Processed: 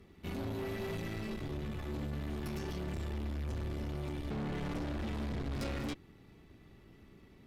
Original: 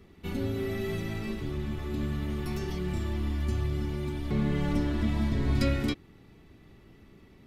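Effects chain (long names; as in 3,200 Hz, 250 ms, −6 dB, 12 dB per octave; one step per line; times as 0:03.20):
tube saturation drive 35 dB, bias 0.65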